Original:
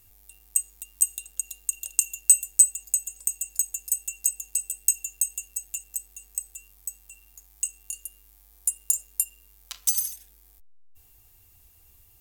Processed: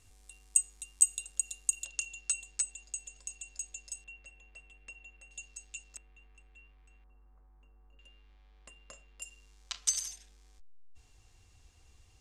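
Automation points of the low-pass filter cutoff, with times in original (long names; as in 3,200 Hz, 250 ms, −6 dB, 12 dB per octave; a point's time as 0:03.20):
low-pass filter 24 dB per octave
8,600 Hz
from 0:01.85 5,300 Hz
from 0:04.04 2,700 Hz
from 0:05.31 5,300 Hz
from 0:05.97 2,700 Hz
from 0:07.04 1,300 Hz
from 0:07.99 3,400 Hz
from 0:09.22 7,000 Hz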